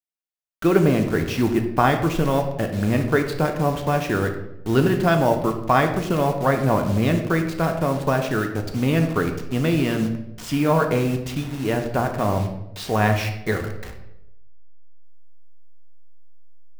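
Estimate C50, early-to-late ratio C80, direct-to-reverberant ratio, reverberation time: 8.0 dB, 10.5 dB, 4.0 dB, 0.85 s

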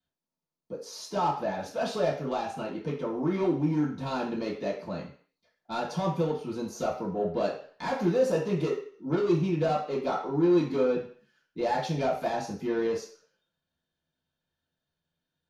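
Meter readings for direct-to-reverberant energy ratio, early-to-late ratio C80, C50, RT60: -10.0 dB, 11.5 dB, 7.0 dB, 0.45 s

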